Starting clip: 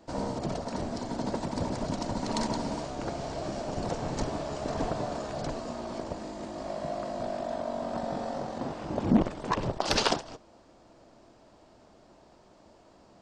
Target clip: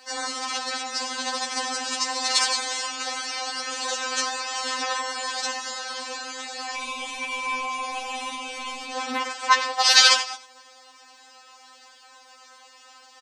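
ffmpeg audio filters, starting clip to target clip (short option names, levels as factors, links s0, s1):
-filter_complex "[0:a]highpass=1400,asettb=1/sr,asplit=3[s0][s1][s2];[s0]atrim=end=6.754[s3];[s1]atrim=start=6.75:end=8.92,asetpts=PTS-STARTPTS,afade=t=in:d=0.004:c=qsin,afade=t=out:st=2.166:d=0.004:c=qsin,aeval=exprs='val(0)*sin(2*PI*1700*n/s)':c=same[s4];[s2]atrim=start=8.916[s5];[s3][s4]acrossfade=d=0.004:c1=hsin:c2=qsin[s6];[s6][s5]acrossfade=d=0.004:c1=qsin:c2=hsin,aecho=1:1:92:0.2,alimiter=level_in=6.31:limit=0.891:release=50:level=0:latency=1,afftfilt=real='re*3.46*eq(mod(b,12),0)':imag='im*3.46*eq(mod(b,12),0)':win_size=2048:overlap=0.75,volume=1.5"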